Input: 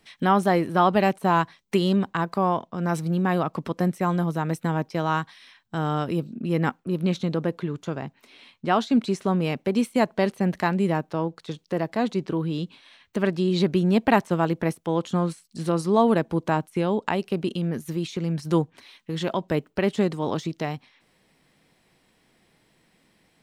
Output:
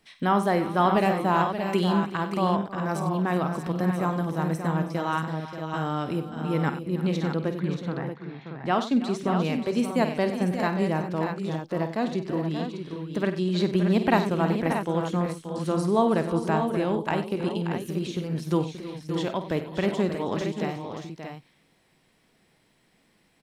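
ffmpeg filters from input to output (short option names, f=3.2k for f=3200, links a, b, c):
-filter_complex "[0:a]asettb=1/sr,asplit=3[a][b][c];[a]atrim=end=7.584[d];[b]atrim=start=7.58:end=8.66,asetpts=PTS-STARTPTS,afade=t=in:d=0.004:c=qsin,afade=t=out:st=1.076:d=0.004:c=qsin,highpass=120,equalizer=f=150:t=q:w=4:g=5,equalizer=f=580:t=q:w=4:g=-5,equalizer=f=860:t=q:w=4:g=4,equalizer=f=1.8k:t=q:w=4:g=6,equalizer=f=3k:t=q:w=4:g=-8,lowpass=f=4k:w=0.5412,lowpass=f=4k:w=1.3066[e];[c]atrim=start=8.656[f];[d][e]acrossfade=d=0.004:c1=hsin:c2=qsin[g];[g][f]acrossfade=d=0.004:c1=qsin:c2=hsin,aecho=1:1:50|94|320|376|580|631:0.282|0.2|0.141|0.133|0.335|0.398,volume=-3dB"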